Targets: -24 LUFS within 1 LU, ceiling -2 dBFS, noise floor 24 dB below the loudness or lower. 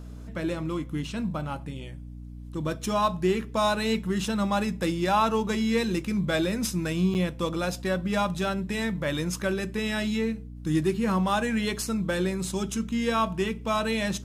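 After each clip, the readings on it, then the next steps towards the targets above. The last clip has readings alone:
dropouts 1; longest dropout 9.1 ms; hum 60 Hz; harmonics up to 300 Hz; hum level -39 dBFS; loudness -27.5 LUFS; peak -12.5 dBFS; loudness target -24.0 LUFS
-> interpolate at 7.14, 9.1 ms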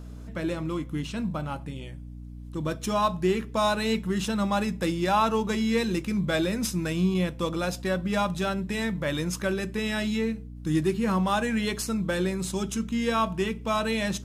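dropouts 0; hum 60 Hz; harmonics up to 300 Hz; hum level -39 dBFS
-> notches 60/120/180/240/300 Hz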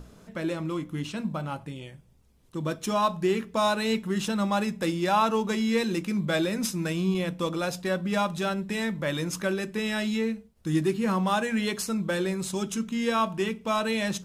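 hum none; loudness -28.0 LUFS; peak -12.5 dBFS; loudness target -24.0 LUFS
-> gain +4 dB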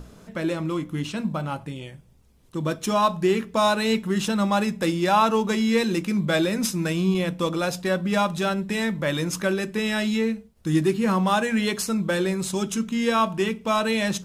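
loudness -24.0 LUFS; peak -8.5 dBFS; noise floor -51 dBFS

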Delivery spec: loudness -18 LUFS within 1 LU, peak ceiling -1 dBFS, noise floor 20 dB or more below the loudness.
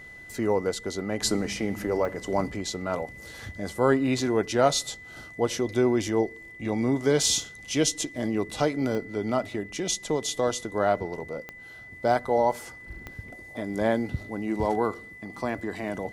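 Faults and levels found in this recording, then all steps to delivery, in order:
clicks 4; steady tone 2000 Hz; tone level -43 dBFS; loudness -27.0 LUFS; peak -7.5 dBFS; loudness target -18.0 LUFS
-> de-click; notch 2000 Hz, Q 30; gain +9 dB; limiter -1 dBFS

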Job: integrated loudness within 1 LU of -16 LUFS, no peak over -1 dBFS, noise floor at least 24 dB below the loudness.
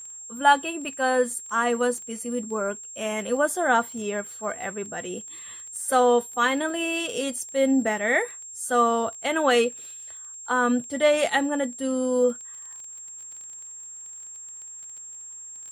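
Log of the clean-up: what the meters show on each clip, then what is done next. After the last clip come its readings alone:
ticks 22/s; steady tone 7500 Hz; tone level -38 dBFS; loudness -24.5 LUFS; peak -5.5 dBFS; loudness target -16.0 LUFS
-> de-click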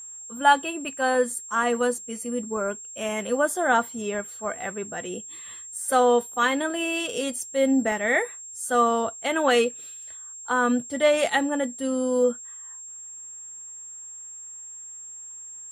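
ticks 0.064/s; steady tone 7500 Hz; tone level -38 dBFS
-> notch 7500 Hz, Q 30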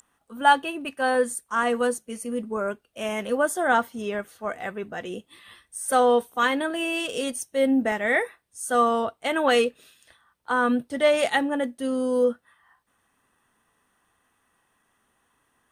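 steady tone none; loudness -24.5 LUFS; peak -5.5 dBFS; loudness target -16.0 LUFS
-> gain +8.5 dB; limiter -1 dBFS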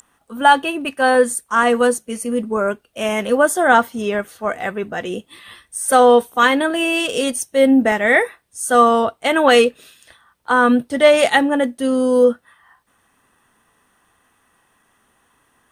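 loudness -16.5 LUFS; peak -1.0 dBFS; noise floor -62 dBFS

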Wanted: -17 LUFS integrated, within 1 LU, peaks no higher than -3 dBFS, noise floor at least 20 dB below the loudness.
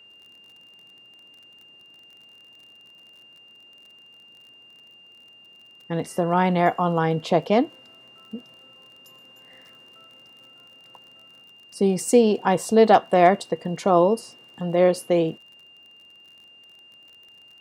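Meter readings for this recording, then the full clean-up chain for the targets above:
ticks 37/s; steady tone 2800 Hz; tone level -48 dBFS; loudness -21.0 LUFS; peak -3.5 dBFS; loudness target -17.0 LUFS
-> de-click; notch 2800 Hz, Q 30; gain +4 dB; limiter -3 dBFS

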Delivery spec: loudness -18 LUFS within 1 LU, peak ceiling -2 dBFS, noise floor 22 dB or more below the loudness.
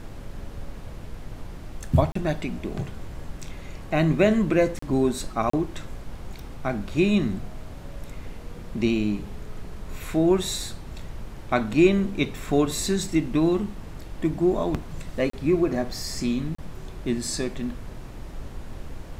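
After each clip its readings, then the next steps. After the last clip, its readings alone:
dropouts 5; longest dropout 34 ms; noise floor -40 dBFS; noise floor target -47 dBFS; loudness -25.0 LUFS; peak -5.0 dBFS; loudness target -18.0 LUFS
-> interpolate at 2.12/4.79/5.5/15.3/16.55, 34 ms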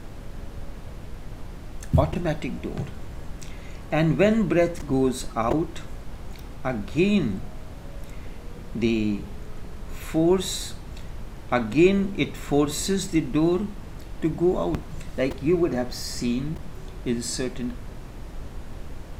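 dropouts 0; noise floor -39 dBFS; noise floor target -47 dBFS
-> noise print and reduce 8 dB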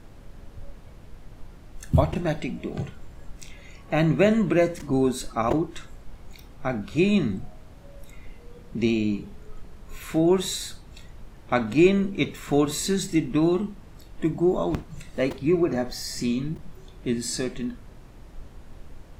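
noise floor -47 dBFS; loudness -25.0 LUFS; peak -5.0 dBFS; loudness target -18.0 LUFS
-> gain +7 dB; limiter -2 dBFS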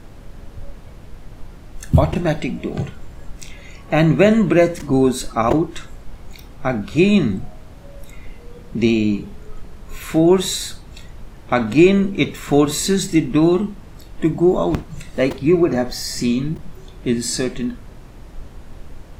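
loudness -18.0 LUFS; peak -2.0 dBFS; noise floor -40 dBFS

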